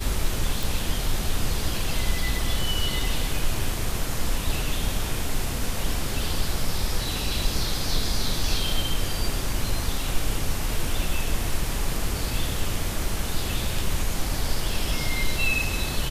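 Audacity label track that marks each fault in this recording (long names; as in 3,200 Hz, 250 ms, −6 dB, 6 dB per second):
0.630000	0.630000	click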